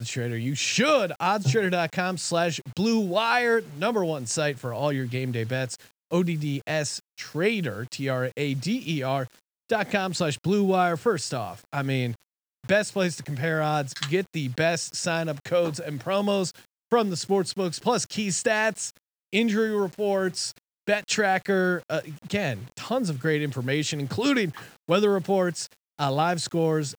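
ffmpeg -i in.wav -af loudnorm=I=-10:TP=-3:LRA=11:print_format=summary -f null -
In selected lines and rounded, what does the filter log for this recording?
Input Integrated:    -25.8 LUFS
Input True Peak:      -6.3 dBTP
Input LRA:             3.1 LU
Input Threshold:     -36.0 LUFS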